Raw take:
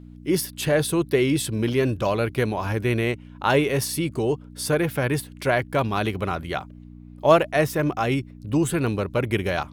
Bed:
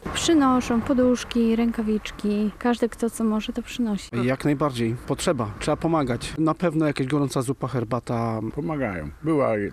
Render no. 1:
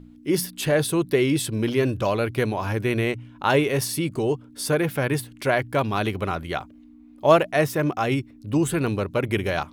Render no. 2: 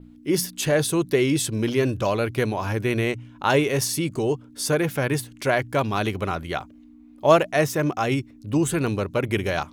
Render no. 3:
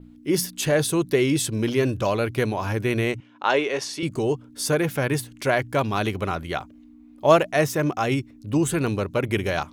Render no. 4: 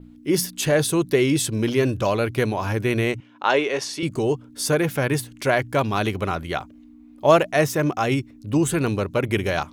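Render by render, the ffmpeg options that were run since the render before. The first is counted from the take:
ffmpeg -i in.wav -af "bandreject=frequency=60:width_type=h:width=4,bandreject=frequency=120:width_type=h:width=4,bandreject=frequency=180:width_type=h:width=4" out.wav
ffmpeg -i in.wav -af "adynamicequalizer=threshold=0.00398:dfrequency=6500:dqfactor=2.1:tfrequency=6500:tqfactor=2.1:attack=5:release=100:ratio=0.375:range=3.5:mode=boostabove:tftype=bell" out.wav
ffmpeg -i in.wav -filter_complex "[0:a]asettb=1/sr,asplit=3[link_01][link_02][link_03];[link_01]atrim=end=3.204[link_04];[link_02]atrim=start=3.2:end=4.03,asetpts=PTS-STARTPTS,afade=type=in:duration=0.004:curve=qsin,afade=type=out:start_time=0.826:duration=0.004:curve=qsin,highpass=360,lowpass=4900[link_05];[link_03]atrim=start=4.026[link_06];[link_04][link_05]acrossfade=duration=0.004:curve1=hsin:curve2=qsin[link_07];[link_07][link_06]acrossfade=duration=0.004:curve1=qsin:curve2=hsin" out.wav
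ffmpeg -i in.wav -af "volume=1.5dB,alimiter=limit=-3dB:level=0:latency=1" out.wav

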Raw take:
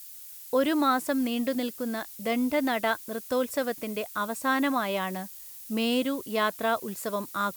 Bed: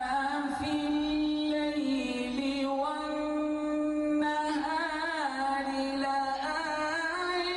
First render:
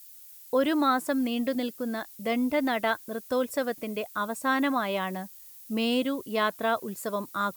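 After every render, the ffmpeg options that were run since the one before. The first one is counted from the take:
ffmpeg -i in.wav -af "afftdn=noise_reduction=6:noise_floor=-45" out.wav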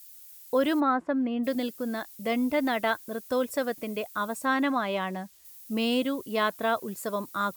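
ffmpeg -i in.wav -filter_complex "[0:a]asplit=3[link_01][link_02][link_03];[link_01]afade=type=out:start_time=0.79:duration=0.02[link_04];[link_02]lowpass=1700,afade=type=in:start_time=0.79:duration=0.02,afade=type=out:start_time=1.43:duration=0.02[link_05];[link_03]afade=type=in:start_time=1.43:duration=0.02[link_06];[link_04][link_05][link_06]amix=inputs=3:normalize=0,asettb=1/sr,asplit=3[link_07][link_08][link_09];[link_07]atrim=end=4.454[link_10];[link_08]atrim=start=4.45:end=5.45,asetpts=PTS-STARTPTS,afade=type=in:duration=0.004:curve=qsin,afade=type=out:start_time=0.996:duration=0.004:curve=qsin,highshelf=frequency=9400:gain=-11.5[link_11];[link_09]atrim=start=5.446[link_12];[link_10][link_11]acrossfade=duration=0.004:curve1=hsin:curve2=qsin[link_13];[link_13][link_12]acrossfade=duration=0.004:curve1=qsin:curve2=hsin" out.wav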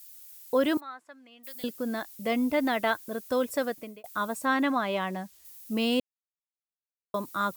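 ffmpeg -i in.wav -filter_complex "[0:a]asettb=1/sr,asplit=3[link_01][link_02][link_03];[link_01]atrim=end=0.774[link_04];[link_02]atrim=start=0.77:end=1.64,asetpts=PTS-STARTPTS,afade=type=in:duration=0.004:curve=qsin,afade=type=out:start_time=0.866:duration=0.004:curve=qsin,aderivative[link_05];[link_03]atrim=start=1.636[link_06];[link_04][link_05]acrossfade=duration=0.004:curve1=hsin:curve2=qsin[link_07];[link_07][link_06]acrossfade=duration=0.004:curve1=qsin:curve2=hsin,asplit=4[link_08][link_09][link_10][link_11];[link_08]atrim=end=4.04,asetpts=PTS-STARTPTS,afade=type=out:start_time=3.64:duration=0.4[link_12];[link_09]atrim=start=4.04:end=6,asetpts=PTS-STARTPTS,afade=type=in:duration=0.004:curve=hsin,afade=type=out:start_time=1.956:duration=0.004:curve=hsin[link_13];[link_10]atrim=start=6:end=7.14,asetpts=PTS-STARTPTS,volume=0[link_14];[link_11]atrim=start=7.14,asetpts=PTS-STARTPTS,afade=type=in:duration=0.004:curve=hsin[link_15];[link_12][link_13][link_14][link_15]concat=n=4:v=0:a=1" out.wav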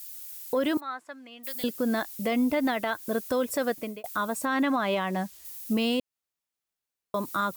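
ffmpeg -i in.wav -af "acontrast=82,alimiter=limit=-18.5dB:level=0:latency=1:release=174" out.wav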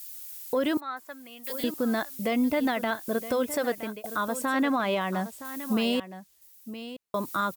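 ffmpeg -i in.wav -af "aecho=1:1:967:0.224" out.wav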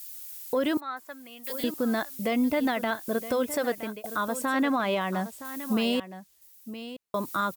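ffmpeg -i in.wav -af anull out.wav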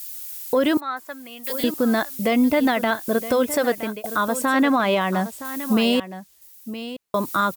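ffmpeg -i in.wav -af "volume=7dB" out.wav

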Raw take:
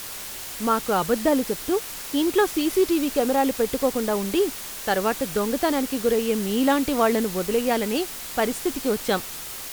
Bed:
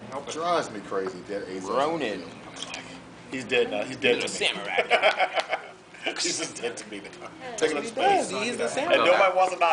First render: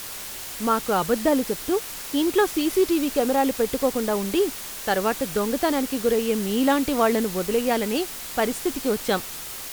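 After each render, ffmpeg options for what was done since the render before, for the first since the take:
ffmpeg -i in.wav -af anull out.wav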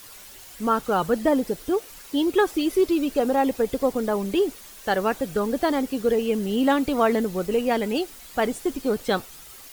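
ffmpeg -i in.wav -af "afftdn=noise_reduction=11:noise_floor=-35" out.wav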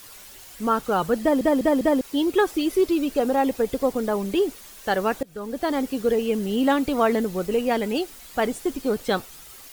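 ffmpeg -i in.wav -filter_complex "[0:a]asplit=6[link_01][link_02][link_03][link_04][link_05][link_06];[link_01]atrim=end=1.412[link_07];[link_02]atrim=start=1.208:end=1.412[link_08];[link_03]atrim=start=1.208:end=1.412[link_09];[link_04]atrim=start=1.208:end=1.412[link_10];[link_05]atrim=start=2.008:end=5.23,asetpts=PTS-STARTPTS,afade=type=out:start_time=3.218:duration=0.004:curve=hsin:silence=0.0707946[link_11];[link_06]atrim=start=5.23,asetpts=PTS-STARTPTS,afade=type=in:duration=0.58:silence=0.0707946[link_12];[link_07][link_08]acrossfade=duration=0.004:curve1=hsin:curve2=hsin[link_13];[link_13][link_09]acrossfade=duration=0.004:curve1=hsin:curve2=hsin[link_14];[link_14][link_10]acrossfade=duration=0.004:curve1=hsin:curve2=hsin[link_15];[link_11][link_12]concat=n=2:v=0:a=1[link_16];[link_15][link_16]acrossfade=duration=0.004:curve1=hsin:curve2=hsin" out.wav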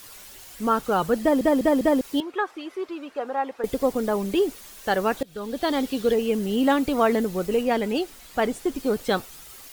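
ffmpeg -i in.wav -filter_complex "[0:a]asettb=1/sr,asplit=3[link_01][link_02][link_03];[link_01]atrim=end=2.204[link_04];[link_02]atrim=start=2.2:end=3.64,asetpts=PTS-STARTPTS,afade=type=in:duration=0.004:curve=qsin,afade=type=out:start_time=1.436:duration=0.004:curve=qsin,bandpass=frequency=1200:width_type=q:width=1.2[link_05];[link_03]atrim=start=3.636[link_06];[link_04][link_05]acrossfade=duration=0.004:curve1=hsin:curve2=qsin[link_07];[link_07][link_06]acrossfade=duration=0.004:curve1=qsin:curve2=hsin,asettb=1/sr,asplit=3[link_08][link_09][link_10];[link_08]atrim=end=5.174[link_11];[link_09]atrim=start=5.17:end=6.14,asetpts=PTS-STARTPTS,afade=type=in:duration=0.004:curve=qsin,afade=type=out:start_time=0.966:duration=0.004:curve=qsin,equalizer=frequency=3600:width=1.8:gain=8[link_12];[link_10]atrim=start=6.136[link_13];[link_11][link_12]acrossfade=duration=0.004:curve1=hsin:curve2=qsin[link_14];[link_14][link_13]acrossfade=duration=0.004:curve1=qsin:curve2=hsin,asettb=1/sr,asplit=3[link_15][link_16][link_17];[link_15]atrim=end=7.634[link_18];[link_16]atrim=start=7.63:end=8.76,asetpts=PTS-STARTPTS,afade=type=in:duration=0.004:curve=qsin,afade=type=out:start_time=1.126:duration=0.004:curve=qsin,highshelf=frequency=6400:gain=-4.5[link_19];[link_17]atrim=start=8.756[link_20];[link_18][link_19]acrossfade=duration=0.004:curve1=hsin:curve2=qsin[link_21];[link_21][link_20]acrossfade=duration=0.004:curve1=qsin:curve2=hsin" out.wav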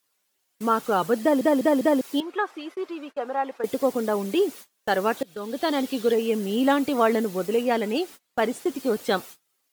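ffmpeg -i in.wav -af "highpass=180,agate=range=-29dB:threshold=-39dB:ratio=16:detection=peak" out.wav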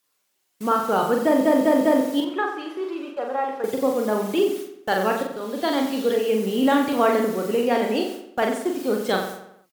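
ffmpeg -i in.wav -filter_complex "[0:a]asplit=2[link_01][link_02];[link_02]adelay=42,volume=-4dB[link_03];[link_01][link_03]amix=inputs=2:normalize=0,asplit=2[link_04][link_05];[link_05]adelay=90,lowpass=frequency=4100:poles=1,volume=-8dB,asplit=2[link_06][link_07];[link_07]adelay=90,lowpass=frequency=4100:poles=1,volume=0.47,asplit=2[link_08][link_09];[link_09]adelay=90,lowpass=frequency=4100:poles=1,volume=0.47,asplit=2[link_10][link_11];[link_11]adelay=90,lowpass=frequency=4100:poles=1,volume=0.47,asplit=2[link_12][link_13];[link_13]adelay=90,lowpass=frequency=4100:poles=1,volume=0.47[link_14];[link_04][link_06][link_08][link_10][link_12][link_14]amix=inputs=6:normalize=0" out.wav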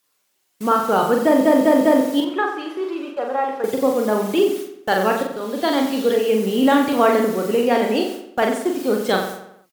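ffmpeg -i in.wav -af "volume=3.5dB" out.wav

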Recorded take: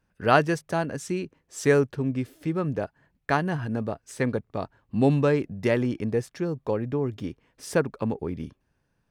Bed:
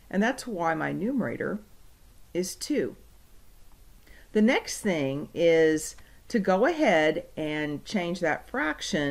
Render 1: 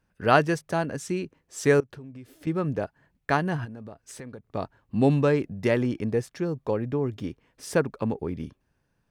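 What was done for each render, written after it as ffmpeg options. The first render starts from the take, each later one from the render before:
ffmpeg -i in.wav -filter_complex "[0:a]asettb=1/sr,asplit=3[link_01][link_02][link_03];[link_01]atrim=end=1.804[link_04];[link_02]atrim=start=1.8:end=2.47,asetpts=PTS-STARTPTS,afade=type=in:duration=0.004:curve=qsin,afade=type=out:start_time=0.666:duration=0.004:curve=qsin,acompressor=threshold=-39dB:ratio=10:attack=3.2:release=140:knee=1:detection=peak[link_05];[link_03]atrim=start=2.466[link_06];[link_04][link_05]acrossfade=duration=0.004:curve1=hsin:curve2=qsin[link_07];[link_07][link_06]acrossfade=duration=0.004:curve1=qsin:curve2=hsin,asplit=3[link_08][link_09][link_10];[link_08]afade=type=out:start_time=3.64:duration=0.02[link_11];[link_09]acompressor=threshold=-38dB:ratio=6:attack=3.2:release=140:knee=1:detection=peak,afade=type=in:start_time=3.64:duration=0.02,afade=type=out:start_time=4.52:duration=0.02[link_12];[link_10]afade=type=in:start_time=4.52:duration=0.02[link_13];[link_11][link_12][link_13]amix=inputs=3:normalize=0" out.wav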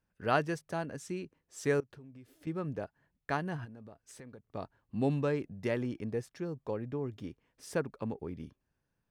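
ffmpeg -i in.wav -af "volume=-9.5dB" out.wav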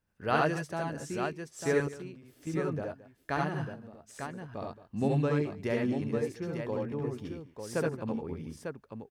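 ffmpeg -i in.wav -af "aecho=1:1:68|81|222|898:0.708|0.668|0.133|0.473" out.wav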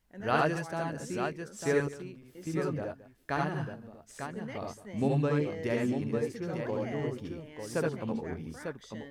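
ffmpeg -i in.wav -i bed.wav -filter_complex "[1:a]volume=-20dB[link_01];[0:a][link_01]amix=inputs=2:normalize=0" out.wav

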